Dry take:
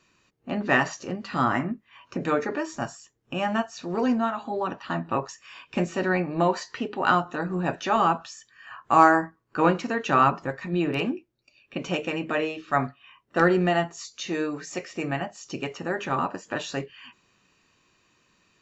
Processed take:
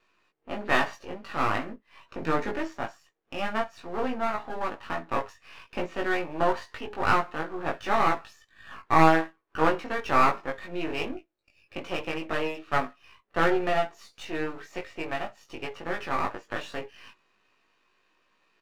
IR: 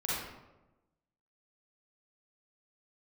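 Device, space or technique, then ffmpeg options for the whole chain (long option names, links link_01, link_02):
crystal radio: -filter_complex "[0:a]asettb=1/sr,asplit=3[link_01][link_02][link_03];[link_01]atrim=end=2.204[link_04];[link_02]atrim=start=2.2:end=2.68,asetpts=PTS-STARTPTS,afade=type=in:duration=0.004:curve=qsin,afade=type=out:start_time=0.476:duration=0.004:curve=qsin,bass=frequency=250:gain=13,treble=frequency=4000:gain=10[link_05];[link_03]atrim=start=2.676[link_06];[link_04][link_05]acrossfade=duration=0.004:curve1=hsin:curve2=qsin[link_07];[link_07][link_06]acrossfade=duration=0.004:curve1=qsin:curve2=hsin,highpass=380,lowpass=2900,aeval=exprs='if(lt(val(0),0),0.251*val(0),val(0))':channel_layout=same,asplit=2[link_08][link_09];[link_09]adelay=19,volume=-2.5dB[link_10];[link_08][link_10]amix=inputs=2:normalize=0"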